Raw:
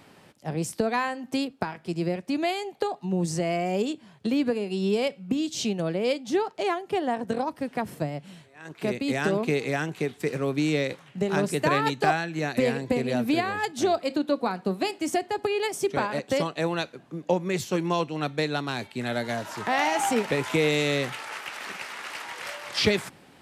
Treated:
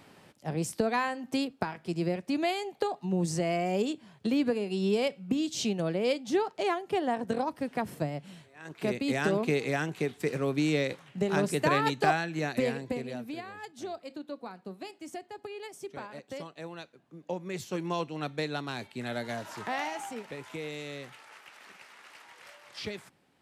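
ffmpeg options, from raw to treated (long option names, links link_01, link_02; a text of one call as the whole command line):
ffmpeg -i in.wav -af "volume=6.5dB,afade=type=out:start_time=12.34:duration=0.93:silence=0.237137,afade=type=in:start_time=17.02:duration=0.97:silence=0.354813,afade=type=out:start_time=19.58:duration=0.5:silence=0.334965" out.wav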